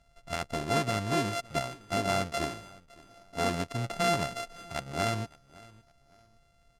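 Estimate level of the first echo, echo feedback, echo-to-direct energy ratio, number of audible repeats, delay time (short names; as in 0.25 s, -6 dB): -22.5 dB, 30%, -22.0 dB, 2, 0.561 s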